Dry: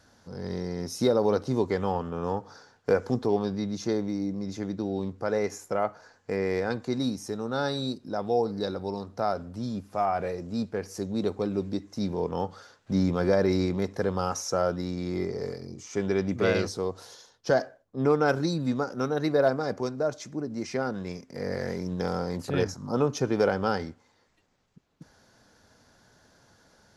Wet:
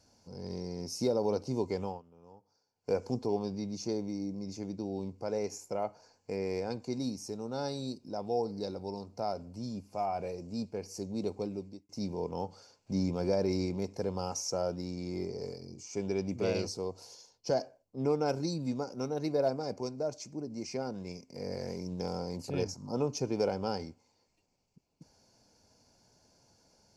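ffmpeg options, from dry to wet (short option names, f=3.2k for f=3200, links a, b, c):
-filter_complex "[0:a]asplit=4[a][b][c][d];[a]atrim=end=2.02,asetpts=PTS-STARTPTS,afade=t=out:st=1.82:d=0.2:silence=0.105925[e];[b]atrim=start=2.02:end=2.75,asetpts=PTS-STARTPTS,volume=-19.5dB[f];[c]atrim=start=2.75:end=11.89,asetpts=PTS-STARTPTS,afade=t=in:d=0.2:silence=0.105925,afade=t=out:st=8.66:d=0.48[g];[d]atrim=start=11.89,asetpts=PTS-STARTPTS,afade=t=in:d=0.004:c=hsin[h];[e][f][g][h]concat=n=4:v=0:a=1,superequalizer=10b=0.355:11b=0.282:13b=0.501:14b=1.78:15b=1.58,volume=-6.5dB"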